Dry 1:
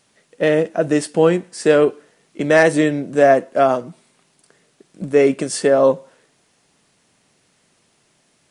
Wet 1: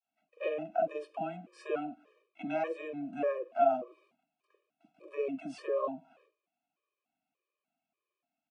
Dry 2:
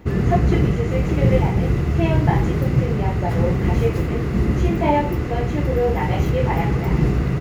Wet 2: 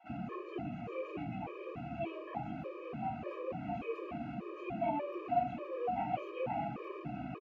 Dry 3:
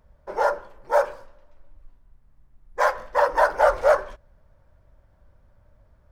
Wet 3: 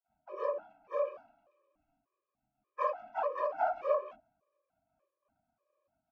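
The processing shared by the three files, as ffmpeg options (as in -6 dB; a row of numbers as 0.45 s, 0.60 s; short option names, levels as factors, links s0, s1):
-filter_complex "[0:a]agate=range=0.0224:threshold=0.00355:ratio=3:detection=peak,equalizer=f=125:t=o:w=1:g=4,equalizer=f=250:t=o:w=1:g=12,equalizer=f=2000:t=o:w=1:g=6,equalizer=f=8000:t=o:w=1:g=-4,acompressor=threshold=0.126:ratio=3,asplit=3[s0][s1][s2];[s0]bandpass=f=730:t=q:w=8,volume=1[s3];[s1]bandpass=f=1090:t=q:w=8,volume=0.501[s4];[s2]bandpass=f=2440:t=q:w=8,volume=0.355[s5];[s3][s4][s5]amix=inputs=3:normalize=0,acrossover=split=680[s6][s7];[s6]adelay=40[s8];[s8][s7]amix=inputs=2:normalize=0,afftfilt=real='re*gt(sin(2*PI*1.7*pts/sr)*(1-2*mod(floor(b*sr/1024/320),2)),0)':imag='im*gt(sin(2*PI*1.7*pts/sr)*(1-2*mod(floor(b*sr/1024/320),2)),0)':win_size=1024:overlap=0.75,volume=1.58"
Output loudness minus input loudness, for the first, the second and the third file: -18.0 LU, -20.0 LU, -12.5 LU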